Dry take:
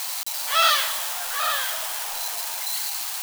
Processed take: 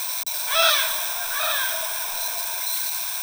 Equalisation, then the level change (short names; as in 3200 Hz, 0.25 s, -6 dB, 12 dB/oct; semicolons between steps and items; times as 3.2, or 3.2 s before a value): ripple EQ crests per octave 1.6, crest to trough 12 dB; 0.0 dB